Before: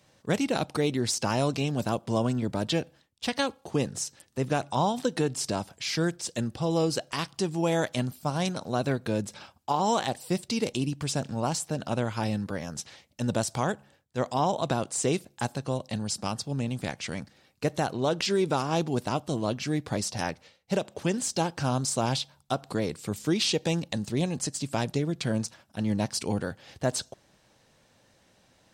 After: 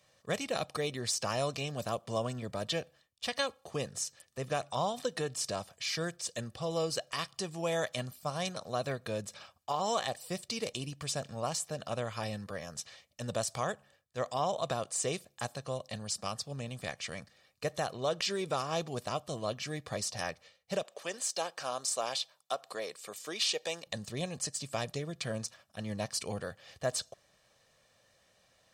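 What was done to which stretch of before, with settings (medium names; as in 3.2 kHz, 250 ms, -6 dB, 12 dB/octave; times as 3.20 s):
20.83–23.87 s: high-pass 410 Hz
whole clip: bass shelf 470 Hz -7.5 dB; comb 1.7 ms, depth 47%; trim -4 dB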